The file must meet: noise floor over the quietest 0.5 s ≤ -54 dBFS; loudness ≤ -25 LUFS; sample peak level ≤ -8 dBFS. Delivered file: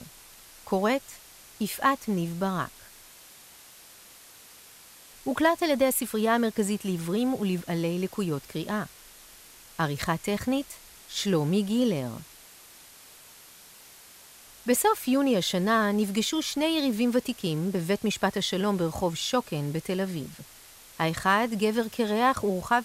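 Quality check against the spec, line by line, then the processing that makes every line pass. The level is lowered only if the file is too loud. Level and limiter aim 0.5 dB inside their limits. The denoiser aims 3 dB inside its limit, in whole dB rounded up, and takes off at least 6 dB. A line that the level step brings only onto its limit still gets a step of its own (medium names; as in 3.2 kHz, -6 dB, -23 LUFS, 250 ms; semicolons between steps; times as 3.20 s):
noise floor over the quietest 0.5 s -51 dBFS: fail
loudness -27.0 LUFS: pass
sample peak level -9.0 dBFS: pass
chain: noise reduction 6 dB, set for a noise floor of -51 dBFS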